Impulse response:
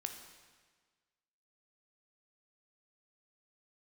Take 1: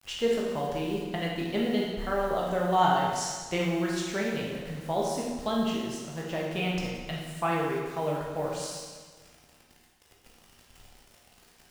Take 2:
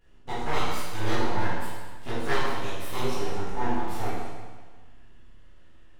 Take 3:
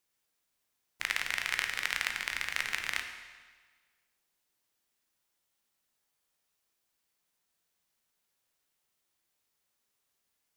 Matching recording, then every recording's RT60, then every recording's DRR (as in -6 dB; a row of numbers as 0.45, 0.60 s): 3; 1.5, 1.5, 1.5 s; -3.5, -13.0, 4.5 dB